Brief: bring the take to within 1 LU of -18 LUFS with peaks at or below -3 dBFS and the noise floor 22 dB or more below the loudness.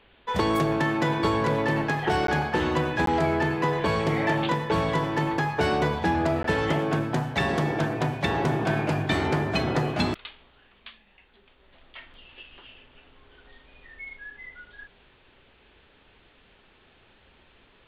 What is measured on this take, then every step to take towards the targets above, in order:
dropouts 3; longest dropout 13 ms; loudness -25.0 LUFS; peak level -11.5 dBFS; loudness target -18.0 LUFS
-> interpolate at 2.27/3.06/6.43 s, 13 ms; trim +7 dB

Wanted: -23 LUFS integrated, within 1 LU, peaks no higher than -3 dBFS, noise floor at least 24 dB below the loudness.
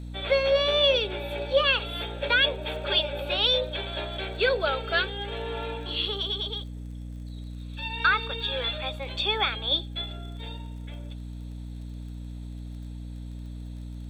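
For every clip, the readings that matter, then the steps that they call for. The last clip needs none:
tick rate 28 per s; hum 60 Hz; highest harmonic 300 Hz; hum level -35 dBFS; loudness -26.0 LUFS; peak level -10.5 dBFS; loudness target -23.0 LUFS
-> de-click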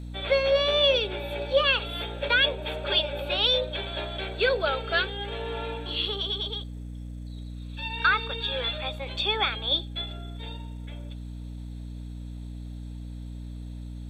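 tick rate 0.14 per s; hum 60 Hz; highest harmonic 300 Hz; hum level -35 dBFS
-> de-hum 60 Hz, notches 5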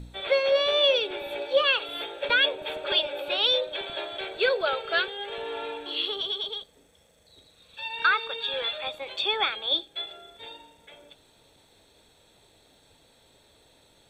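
hum not found; loudness -26.0 LUFS; peak level -11.0 dBFS; loudness target -23.0 LUFS
-> trim +3 dB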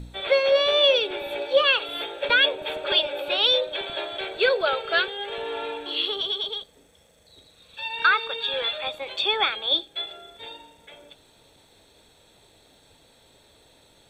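loudness -23.0 LUFS; peak level -8.0 dBFS; noise floor -58 dBFS

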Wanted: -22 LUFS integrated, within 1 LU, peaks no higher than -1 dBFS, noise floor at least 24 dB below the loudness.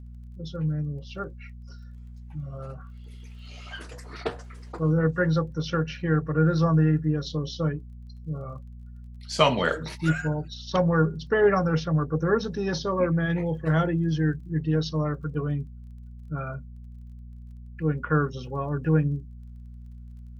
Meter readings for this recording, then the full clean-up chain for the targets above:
tick rate 23 per s; hum 60 Hz; highest harmonic 240 Hz; hum level -40 dBFS; loudness -26.0 LUFS; peak level -5.5 dBFS; loudness target -22.0 LUFS
-> de-click; de-hum 60 Hz, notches 4; trim +4 dB

